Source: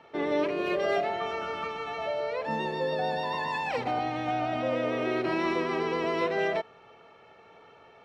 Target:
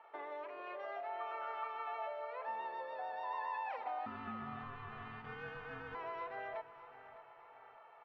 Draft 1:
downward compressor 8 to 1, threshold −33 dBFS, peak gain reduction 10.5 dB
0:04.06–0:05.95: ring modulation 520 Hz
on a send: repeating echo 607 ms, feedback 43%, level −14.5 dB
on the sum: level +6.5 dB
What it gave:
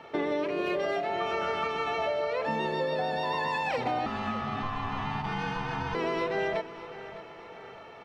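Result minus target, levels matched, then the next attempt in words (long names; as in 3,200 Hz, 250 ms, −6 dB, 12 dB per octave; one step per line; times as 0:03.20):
1,000 Hz band −3.0 dB
downward compressor 8 to 1, threshold −33 dBFS, peak gain reduction 10.5 dB
four-pole ladder band-pass 1,100 Hz, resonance 30%
0:04.06–0:05.95: ring modulation 520 Hz
on a send: repeating echo 607 ms, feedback 43%, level −14.5 dB
on the sum: level +6.5 dB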